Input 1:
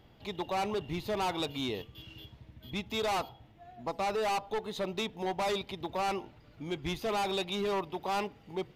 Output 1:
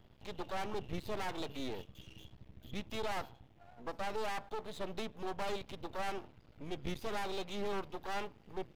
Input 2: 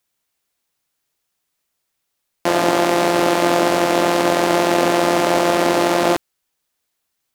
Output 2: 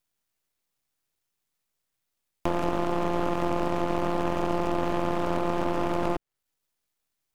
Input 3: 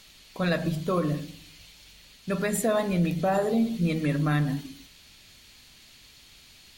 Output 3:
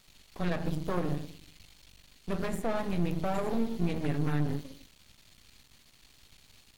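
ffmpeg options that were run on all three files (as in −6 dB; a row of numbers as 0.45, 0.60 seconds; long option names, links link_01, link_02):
-filter_complex "[0:a]acrossover=split=590|1300|2700[link_01][link_02][link_03][link_04];[link_01]acompressor=threshold=-21dB:ratio=4[link_05];[link_02]acompressor=threshold=-28dB:ratio=4[link_06];[link_03]acompressor=threshold=-35dB:ratio=4[link_07];[link_04]acompressor=threshold=-42dB:ratio=4[link_08];[link_05][link_06][link_07][link_08]amix=inputs=4:normalize=0,lowshelf=frequency=260:gain=6.5,aeval=exprs='max(val(0),0)':channel_layout=same,volume=-3.5dB"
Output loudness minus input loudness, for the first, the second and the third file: −7.5, −11.5, −6.0 LU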